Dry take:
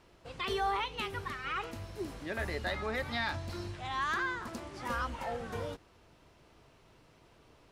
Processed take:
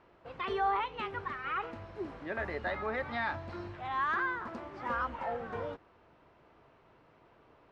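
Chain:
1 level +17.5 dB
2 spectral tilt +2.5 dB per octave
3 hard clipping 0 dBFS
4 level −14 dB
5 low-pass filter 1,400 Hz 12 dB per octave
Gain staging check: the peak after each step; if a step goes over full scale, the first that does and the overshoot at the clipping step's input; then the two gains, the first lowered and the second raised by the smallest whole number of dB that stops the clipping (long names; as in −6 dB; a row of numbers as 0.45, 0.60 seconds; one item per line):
−4.0, −3.0, −3.0, −17.0, −20.5 dBFS
no step passes full scale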